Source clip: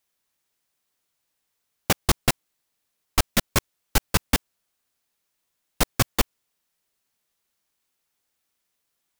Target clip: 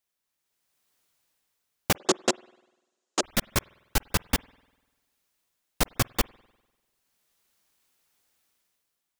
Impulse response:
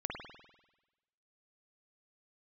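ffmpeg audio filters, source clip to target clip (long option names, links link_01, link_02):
-filter_complex "[0:a]asplit=2[link_01][link_02];[1:a]atrim=start_sample=2205,lowshelf=frequency=150:gain=-9[link_03];[link_02][link_03]afir=irnorm=-1:irlink=0,volume=-23.5dB[link_04];[link_01][link_04]amix=inputs=2:normalize=0,dynaudnorm=framelen=200:gausssize=7:maxgain=12dB,asettb=1/sr,asplit=3[link_05][link_06][link_07];[link_05]atrim=end=1.964[link_08];[link_06]atrim=start=1.96:end=3.23,asetpts=PTS-STARTPTS,afade=type=in:duration=0.004:curve=qsin,afade=type=out:start_time=1.266:duration=0.004:curve=qsin,highpass=frequency=210:width=0.5412,highpass=frequency=210:width=1.3066,equalizer=frequency=370:width_type=q:width=4:gain=10,equalizer=frequency=560:width_type=q:width=4:gain=7,equalizer=frequency=2200:width_type=q:width=4:gain=-7,equalizer=frequency=6900:width_type=q:width=4:gain=7,lowpass=frequency=8000:width=0.5412,lowpass=frequency=8000:width=1.3066[link_09];[link_07]atrim=start=3.226[link_10];[link_08][link_09]acrossfade=duration=0.004:curve1=hsin:curve2=qsin[link_11];[link_11][link_10]acrossfade=duration=0.004:curve1=qsin:curve2=hsin,volume=-7dB"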